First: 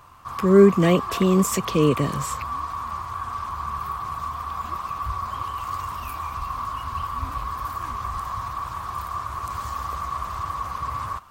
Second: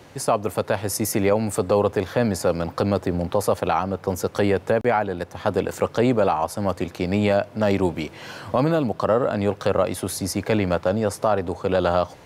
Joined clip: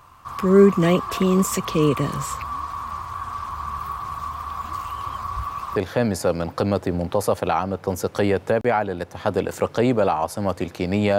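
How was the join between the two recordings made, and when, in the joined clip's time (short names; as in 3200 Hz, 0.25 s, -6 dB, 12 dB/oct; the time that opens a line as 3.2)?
first
4.73–5.76 reverse
5.76 switch to second from 1.96 s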